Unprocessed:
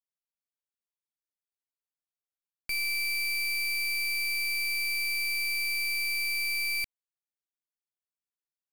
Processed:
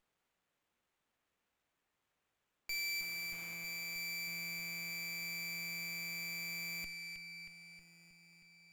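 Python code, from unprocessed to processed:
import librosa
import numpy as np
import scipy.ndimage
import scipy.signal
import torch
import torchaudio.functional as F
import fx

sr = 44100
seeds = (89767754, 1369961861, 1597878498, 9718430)

p1 = fx.quant_dither(x, sr, seeds[0], bits=8, dither='triangular', at=(2.72, 3.53), fade=0.02)
p2 = fx.tube_stage(p1, sr, drive_db=53.0, bias=0.6)
p3 = p2 + fx.echo_banded(p2, sr, ms=316, feedback_pct=75, hz=2800.0, wet_db=-4.5, dry=0)
p4 = fx.running_max(p3, sr, window=9)
y = F.gain(torch.from_numpy(p4), 16.0).numpy()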